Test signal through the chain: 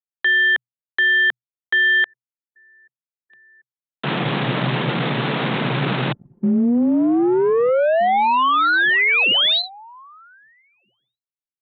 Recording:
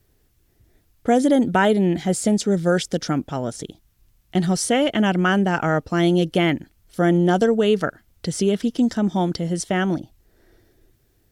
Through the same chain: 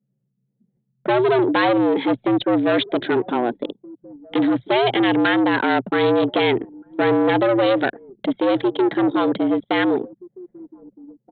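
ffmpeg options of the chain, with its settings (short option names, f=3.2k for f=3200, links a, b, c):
-filter_complex "[0:a]aresample=8000,asoftclip=type=tanh:threshold=-23dB,aresample=44100,afreqshift=120,asplit=2[a][b];[b]adelay=1574,volume=-18dB,highshelf=f=4k:g=-35.4[c];[a][c]amix=inputs=2:normalize=0,anlmdn=1,volume=8.5dB"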